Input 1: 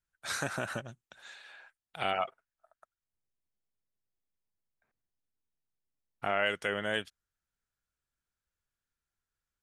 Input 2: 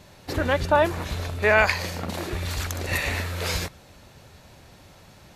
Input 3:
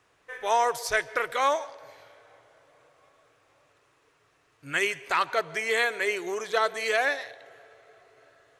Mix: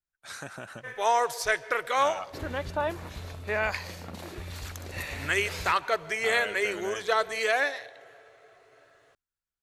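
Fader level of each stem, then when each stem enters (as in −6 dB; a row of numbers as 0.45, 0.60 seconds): −6.0, −10.0, −0.5 decibels; 0.00, 2.05, 0.55 seconds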